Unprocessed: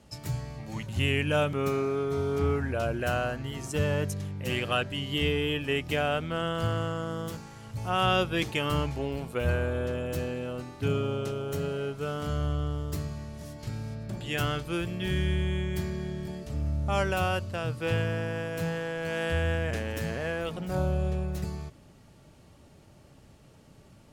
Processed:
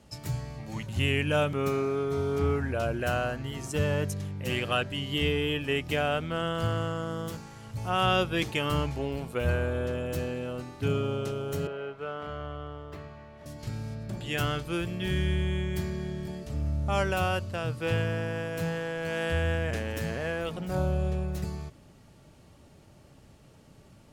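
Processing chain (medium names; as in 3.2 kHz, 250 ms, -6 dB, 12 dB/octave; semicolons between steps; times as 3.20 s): 11.67–13.46 s: three-band isolator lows -12 dB, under 410 Hz, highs -23 dB, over 3.1 kHz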